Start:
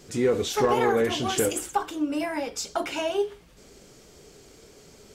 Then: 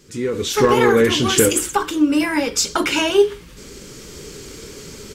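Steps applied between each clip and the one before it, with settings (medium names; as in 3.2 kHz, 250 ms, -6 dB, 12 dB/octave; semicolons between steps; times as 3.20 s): level rider gain up to 16 dB; peaking EQ 700 Hz -15 dB 0.46 oct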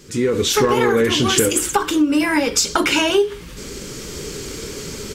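compression 4:1, threshold -20 dBFS, peak gain reduction 10.5 dB; trim +6 dB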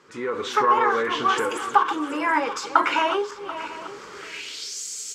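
backward echo that repeats 368 ms, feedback 58%, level -12 dB; band-pass sweep 1.1 kHz -> 7.2 kHz, 4.09–4.82 s; trim +5 dB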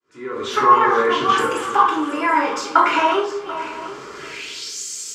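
fade-in on the opening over 0.52 s; simulated room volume 840 m³, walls furnished, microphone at 3.1 m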